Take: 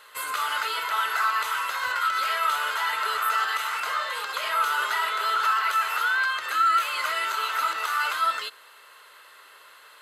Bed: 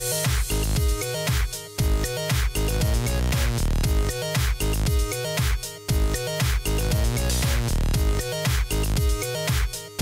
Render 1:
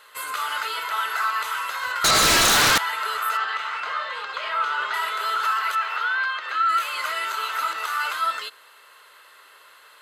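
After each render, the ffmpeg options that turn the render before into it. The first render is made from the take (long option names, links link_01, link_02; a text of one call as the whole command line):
ffmpeg -i in.wav -filter_complex "[0:a]asettb=1/sr,asplit=3[link_01][link_02][link_03];[link_01]atrim=end=2.044[link_04];[link_02]atrim=start=2.04:end=2.78,asetpts=PTS-STARTPTS,afade=type=in:duration=0.004:curve=qsin,afade=type=out:start_time=0.736:duration=0.004:curve=qsin,aeval=exprs='0.2*sin(PI/2*5.62*val(0)/0.2)':channel_layout=same[link_05];[link_03]atrim=start=2.776[link_06];[link_04][link_05]acrossfade=duration=0.004:curve1=hsin:curve2=qsin[link_07];[link_07][link_06]acrossfade=duration=0.004:curve1=qsin:curve2=hsin,asettb=1/sr,asplit=3[link_08][link_09][link_10];[link_08]atrim=end=3.374[link_11];[link_09]atrim=start=3.37:end=4.94,asetpts=PTS-STARTPTS,afade=type=in:duration=0.004:curve=qsin,afade=type=out:start_time=1.566:duration=0.004:curve=qsin,lowpass=4000[link_12];[link_10]atrim=start=4.936[link_13];[link_11][link_12]acrossfade=duration=0.004:curve1=hsin:curve2=qsin[link_14];[link_14][link_13]acrossfade=duration=0.004:curve1=qsin:curve2=hsin,asettb=1/sr,asplit=3[link_15][link_16][link_17];[link_15]atrim=end=5.754[link_18];[link_16]atrim=start=5.75:end=6.69,asetpts=PTS-STARTPTS,afade=type=in:duration=0.004:curve=qsin,afade=type=out:start_time=0.936:duration=0.004:curve=qsin,acrossover=split=280 5000:gain=0.141 1 0.1[link_19][link_20][link_21];[link_19][link_20][link_21]amix=inputs=3:normalize=0[link_22];[link_17]atrim=start=6.686[link_23];[link_18][link_22]acrossfade=duration=0.004:curve1=hsin:curve2=qsin[link_24];[link_24][link_23]acrossfade=duration=0.004:curve1=qsin:curve2=hsin" out.wav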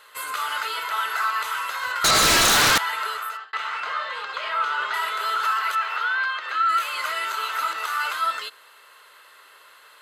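ffmpeg -i in.wav -filter_complex "[0:a]asplit=2[link_01][link_02];[link_01]atrim=end=3.53,asetpts=PTS-STARTPTS,afade=type=out:start_time=3.01:duration=0.52[link_03];[link_02]atrim=start=3.53,asetpts=PTS-STARTPTS,afade=type=in:duration=0.004:curve=hsin[link_04];[link_03][link_04]concat=n=2:v=0:a=1" out.wav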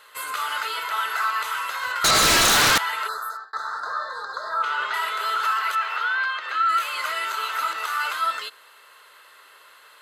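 ffmpeg -i in.wav -filter_complex "[0:a]asplit=3[link_01][link_02][link_03];[link_01]afade=type=out:start_time=3.07:duration=0.02[link_04];[link_02]asuperstop=centerf=2600:order=12:qfactor=1.3,afade=type=in:start_time=3.07:duration=0.02,afade=type=out:start_time=4.62:duration=0.02[link_05];[link_03]afade=type=in:start_time=4.62:duration=0.02[link_06];[link_04][link_05][link_06]amix=inputs=3:normalize=0" out.wav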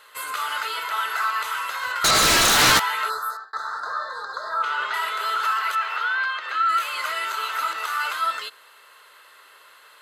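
ffmpeg -i in.wav -filter_complex "[0:a]asettb=1/sr,asplit=3[link_01][link_02][link_03];[link_01]atrim=end=2.574[link_04];[link_02]atrim=start=2.57:end=3.37,asetpts=PTS-STARTPTS,afade=type=in:duration=0.004:curve=qsin,afade=type=out:start_time=0.796:duration=0.004:curve=qsin,asplit=2[link_05][link_06];[link_06]adelay=16,volume=-2.5dB[link_07];[link_05][link_07]amix=inputs=2:normalize=0,atrim=end_sample=35280[link_08];[link_03]atrim=start=3.366[link_09];[link_04][link_08]acrossfade=duration=0.004:curve1=hsin:curve2=qsin[link_10];[link_10][link_09]acrossfade=duration=0.004:curve1=qsin:curve2=hsin" out.wav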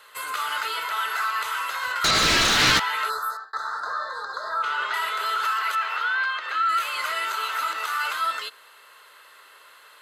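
ffmpeg -i in.wav -filter_complex "[0:a]acrossover=split=430|1400|5900[link_01][link_02][link_03][link_04];[link_02]alimiter=level_in=0.5dB:limit=-24dB:level=0:latency=1,volume=-0.5dB[link_05];[link_04]acompressor=threshold=-38dB:ratio=4[link_06];[link_01][link_05][link_03][link_06]amix=inputs=4:normalize=0" out.wav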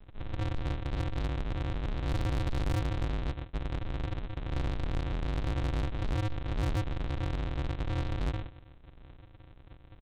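ffmpeg -i in.wav -af "aresample=8000,acrusher=samples=38:mix=1:aa=0.000001,aresample=44100,asoftclip=type=tanh:threshold=-27dB" out.wav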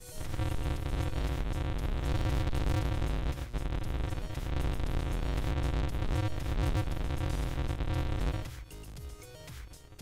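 ffmpeg -i in.wav -i bed.wav -filter_complex "[1:a]volume=-23dB[link_01];[0:a][link_01]amix=inputs=2:normalize=0" out.wav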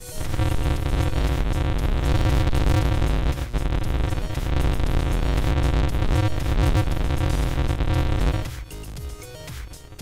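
ffmpeg -i in.wav -af "volume=10.5dB" out.wav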